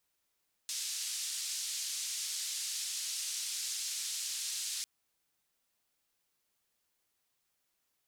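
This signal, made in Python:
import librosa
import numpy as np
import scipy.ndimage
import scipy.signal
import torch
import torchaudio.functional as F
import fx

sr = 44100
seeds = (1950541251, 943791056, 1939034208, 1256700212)

y = fx.band_noise(sr, seeds[0], length_s=4.15, low_hz=4500.0, high_hz=7000.0, level_db=-38.0)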